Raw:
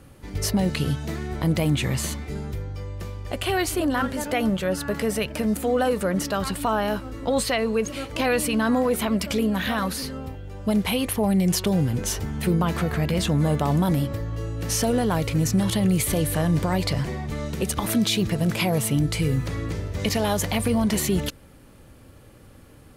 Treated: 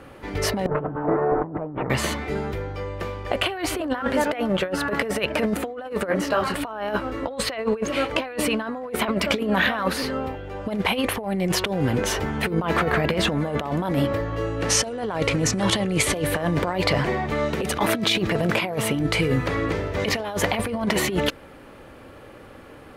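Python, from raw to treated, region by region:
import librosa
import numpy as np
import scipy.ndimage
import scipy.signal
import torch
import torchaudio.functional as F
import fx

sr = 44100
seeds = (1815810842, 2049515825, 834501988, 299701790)

y = fx.chain(x, sr, fx.lower_of_two(delay_ms=6.6),
    fx.lowpass(hz=1200.0, slope=24),
    fx.over_compress(threshold_db=-32.0, ratio=-1.0), at=(0.66, 1.9))
y = fx.chain(y, sr, fx.notch(hz=3600.0, q=14.0),
    fx.detune_double(cents=45), at=(6.09, 6.54))
y = fx.chain(y, sr, fx.lowpass(hz=11000.0, slope=24),
    fx.dynamic_eq(hz=6600.0, q=1.0, threshold_db=-41.0, ratio=4.0, max_db=8), at=(14.61, 16.15))
y = fx.bass_treble(y, sr, bass_db=-13, treble_db=-15)
y = fx.over_compress(y, sr, threshold_db=-30.0, ratio=-0.5)
y = y * librosa.db_to_amplitude(8.0)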